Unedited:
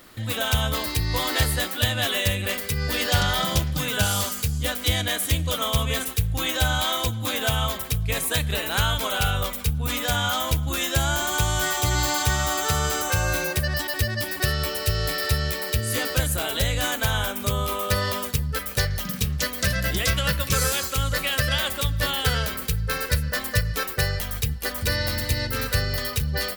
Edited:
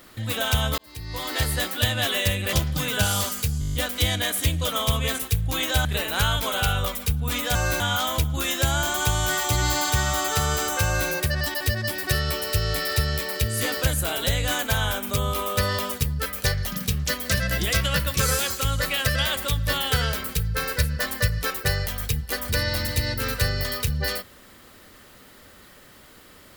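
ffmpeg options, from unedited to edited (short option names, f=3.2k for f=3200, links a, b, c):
-filter_complex "[0:a]asplit=13[a][b][c][d][e][f][g][h][i][j][k][l][m];[a]atrim=end=0.78,asetpts=PTS-STARTPTS,afade=t=out:st=0.776:d=0.004:c=hsin[n];[b]atrim=start=0.78:end=2.532,asetpts=PTS-STARTPTS,afade=t=in:d=0.86[o];[c]atrim=start=3.528:end=4.622[p];[d]atrim=start=4.598:end=4.622[q];[e]atrim=start=4.598:end=4.622[r];[f]atrim=start=4.598:end=4.622[s];[g]atrim=start=4.598:end=4.622[t];[h]atrim=start=4.598:end=4.622[u];[i]atrim=start=4.598:end=4.622[v];[j]atrim=start=4.598:end=6.712[w];[k]atrim=start=8.428:end=10.132[x];[l]atrim=start=13.168:end=13.422[y];[m]atrim=start=10.128[z];[n][o]concat=n=2:v=0:a=1[aa];[aa][p]acrossfade=d=0.004:c1=hsin:c2=hsin[ab];[ab][q]acrossfade=d=0.004:c1=hsin:c2=hsin[ac];[ac][r]acrossfade=d=0.004:c1=hsin:c2=hsin[ad];[ad][s]acrossfade=d=0.004:c1=hsin:c2=hsin[ae];[ae][t]acrossfade=d=0.004:c1=hsin:c2=hsin[af];[af][u]acrossfade=d=0.004:c1=hsin:c2=hsin[ag];[ag][v]acrossfade=d=0.004:c1=hsin:c2=hsin[ah];[ah][w]acrossfade=d=0.004:c1=hsin:c2=hsin[ai];[ai][x]acrossfade=d=0.004:c1=hsin:c2=hsin[aj];[aj][y]acrossfade=d=0.004:c1=hsin:c2=hsin[ak];[ak][z]acrossfade=d=0.004:c1=hsin:c2=hsin"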